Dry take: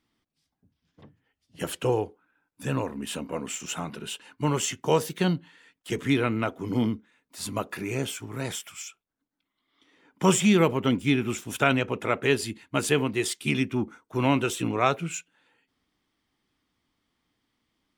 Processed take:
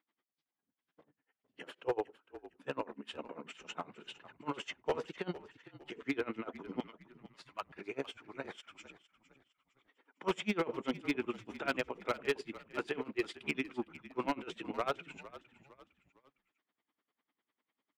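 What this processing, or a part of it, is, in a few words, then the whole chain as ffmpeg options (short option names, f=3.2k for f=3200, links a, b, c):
helicopter radio: -filter_complex "[0:a]highpass=350,lowpass=2.5k,aeval=exprs='val(0)*pow(10,-27*(0.5-0.5*cos(2*PI*10*n/s))/20)':c=same,asoftclip=type=hard:threshold=-24dB,asettb=1/sr,asplit=3[a][b][c];[a]atrim=end=6.804[d];[b]atrim=start=6.8:end=7.73,asetpts=PTS-STARTPTS,afade=t=in:d=0.004:c=qsin,afade=t=out:st=0.926:d=0.004:c=qsin,highpass=980[e];[c]atrim=start=7.726[f];[d][e]acrossfade=d=0.004:c1=hsin:c2=qsin[g];[g][f]acrossfade=d=0.004:c1=qsin:c2=hsin,asplit=4[h][i][j][k];[i]adelay=457,afreqshift=-48,volume=-16.5dB[l];[j]adelay=914,afreqshift=-96,volume=-24.9dB[m];[k]adelay=1371,afreqshift=-144,volume=-33.3dB[n];[h][l][m][n]amix=inputs=4:normalize=0,volume=-1dB"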